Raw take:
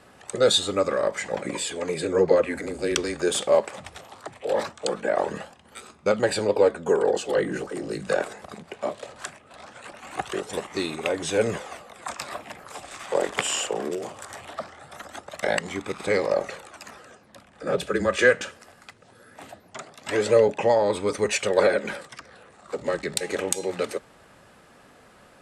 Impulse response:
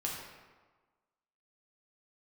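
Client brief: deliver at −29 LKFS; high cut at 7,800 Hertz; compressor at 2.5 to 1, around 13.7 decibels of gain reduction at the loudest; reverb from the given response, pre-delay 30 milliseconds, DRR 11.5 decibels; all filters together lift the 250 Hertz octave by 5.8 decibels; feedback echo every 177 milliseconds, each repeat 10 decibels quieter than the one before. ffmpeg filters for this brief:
-filter_complex "[0:a]lowpass=7800,equalizer=frequency=250:width_type=o:gain=8,acompressor=threshold=-33dB:ratio=2.5,aecho=1:1:177|354|531|708:0.316|0.101|0.0324|0.0104,asplit=2[link_01][link_02];[1:a]atrim=start_sample=2205,adelay=30[link_03];[link_02][link_03]afir=irnorm=-1:irlink=0,volume=-14.5dB[link_04];[link_01][link_04]amix=inputs=2:normalize=0,volume=4.5dB"

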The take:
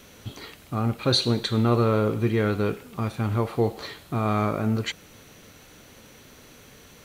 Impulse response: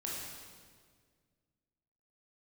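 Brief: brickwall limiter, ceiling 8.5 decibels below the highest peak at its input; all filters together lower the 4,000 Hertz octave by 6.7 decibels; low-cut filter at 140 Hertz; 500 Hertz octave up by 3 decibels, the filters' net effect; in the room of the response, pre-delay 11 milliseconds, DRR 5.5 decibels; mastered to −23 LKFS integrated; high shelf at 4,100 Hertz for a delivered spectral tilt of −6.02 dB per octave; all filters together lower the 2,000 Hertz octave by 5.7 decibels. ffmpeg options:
-filter_complex "[0:a]highpass=140,equalizer=frequency=500:width_type=o:gain=4,equalizer=frequency=2000:width_type=o:gain=-6.5,equalizer=frequency=4000:width_type=o:gain=-4,highshelf=frequency=4100:gain=-3.5,alimiter=limit=-16.5dB:level=0:latency=1,asplit=2[link_01][link_02];[1:a]atrim=start_sample=2205,adelay=11[link_03];[link_02][link_03]afir=irnorm=-1:irlink=0,volume=-7dB[link_04];[link_01][link_04]amix=inputs=2:normalize=0,volume=4dB"

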